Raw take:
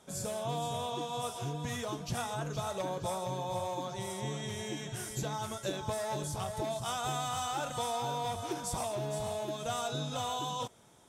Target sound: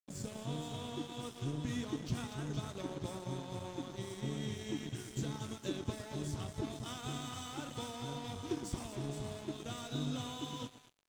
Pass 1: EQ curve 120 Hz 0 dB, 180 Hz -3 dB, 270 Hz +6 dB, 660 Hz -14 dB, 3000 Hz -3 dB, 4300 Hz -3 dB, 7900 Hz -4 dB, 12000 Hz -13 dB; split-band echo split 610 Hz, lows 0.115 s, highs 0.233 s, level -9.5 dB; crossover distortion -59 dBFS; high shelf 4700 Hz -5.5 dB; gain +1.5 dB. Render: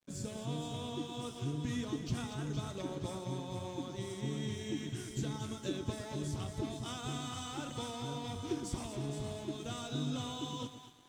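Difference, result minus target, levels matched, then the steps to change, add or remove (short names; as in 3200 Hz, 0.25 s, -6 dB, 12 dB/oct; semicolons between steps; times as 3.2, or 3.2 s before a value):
crossover distortion: distortion -10 dB
change: crossover distortion -49 dBFS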